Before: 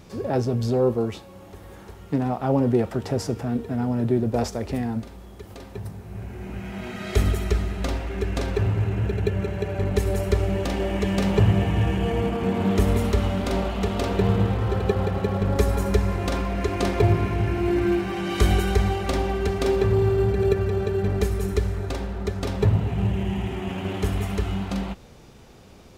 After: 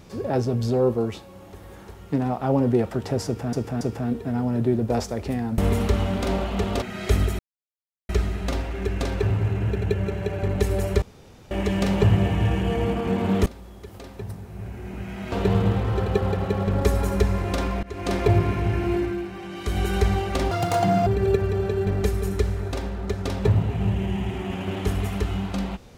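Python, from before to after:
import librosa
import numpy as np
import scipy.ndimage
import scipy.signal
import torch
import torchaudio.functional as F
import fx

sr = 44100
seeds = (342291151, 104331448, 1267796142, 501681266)

y = fx.edit(x, sr, fx.repeat(start_s=3.25, length_s=0.28, count=3),
    fx.swap(start_s=5.02, length_s=1.86, other_s=12.82, other_length_s=1.24),
    fx.insert_silence(at_s=7.45, length_s=0.7),
    fx.room_tone_fill(start_s=10.38, length_s=0.49),
    fx.fade_in_from(start_s=16.57, length_s=0.34, floor_db=-22.5),
    fx.fade_down_up(start_s=17.64, length_s=1.07, db=-8.0, fade_s=0.27),
    fx.speed_span(start_s=19.25, length_s=0.99, speed=1.78), tone=tone)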